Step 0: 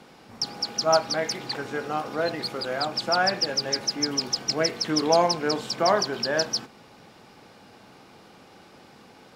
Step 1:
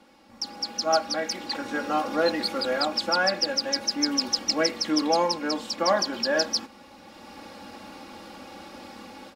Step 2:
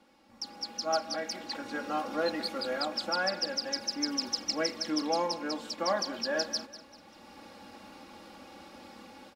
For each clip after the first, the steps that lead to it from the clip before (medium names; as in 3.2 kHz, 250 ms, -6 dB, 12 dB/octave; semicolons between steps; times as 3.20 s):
comb 3.6 ms, depth 88%; level rider gain up to 13.5 dB; trim -8.5 dB
feedback delay 196 ms, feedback 37%, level -15.5 dB; trim -7 dB